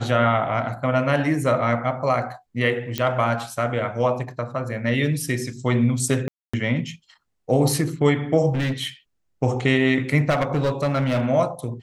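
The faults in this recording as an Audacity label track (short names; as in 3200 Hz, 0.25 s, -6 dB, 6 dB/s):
2.980000	2.980000	pop -8 dBFS
6.280000	6.540000	gap 0.255 s
8.540000	8.870000	clipped -20 dBFS
10.290000	11.270000	clipped -17 dBFS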